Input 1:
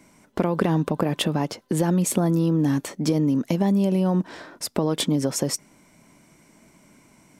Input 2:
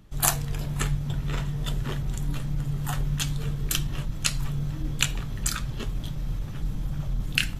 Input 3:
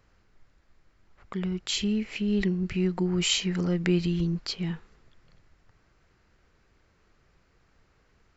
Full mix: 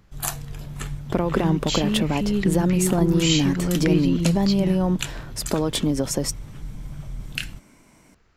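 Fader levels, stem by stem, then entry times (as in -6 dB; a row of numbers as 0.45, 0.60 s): 0.0, -5.0, +2.5 dB; 0.75, 0.00, 0.00 s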